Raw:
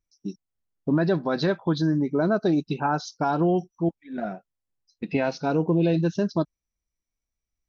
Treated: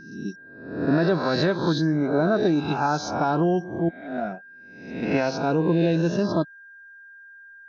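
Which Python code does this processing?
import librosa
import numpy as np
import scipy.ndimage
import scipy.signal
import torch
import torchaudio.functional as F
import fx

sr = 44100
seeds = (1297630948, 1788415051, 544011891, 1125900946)

y = fx.spec_swells(x, sr, rise_s=0.74)
y = y + 10.0 ** (-44.0 / 20.0) * np.sin(2.0 * np.pi * 1600.0 * np.arange(len(y)) / sr)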